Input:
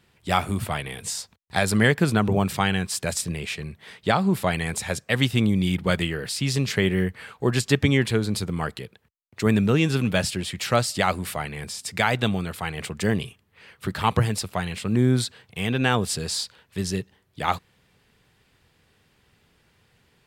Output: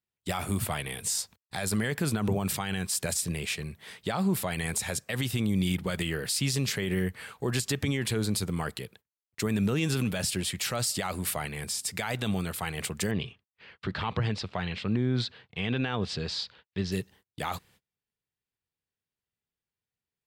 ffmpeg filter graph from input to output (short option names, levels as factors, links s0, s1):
-filter_complex "[0:a]asettb=1/sr,asplit=3[s0][s1][s2];[s0]atrim=end=13.114[s3];[s1]atrim=start=13.11:end=16.92,asetpts=PTS-STARTPTS,afade=t=in:d=0.004:c=qsin,afade=t=out:st=3.806:d=0.004:c=qsin,agate=range=0.0224:threshold=0.00158:ratio=3:release=100:detection=peak,lowpass=f=4300:w=0.5412,lowpass=f=4300:w=1.3066[s4];[s2]atrim=start=16.916[s5];[s3][s4]acrossfade=d=0.004:c1=hsin:c2=qsin[s6];[s6][s5]acrossfade=d=0.004:c1=qsin:c2=hsin,agate=range=0.0316:threshold=0.00282:ratio=16:detection=peak,highshelf=f=6800:g=10.5,alimiter=limit=0.168:level=0:latency=1:release=44,volume=0.708"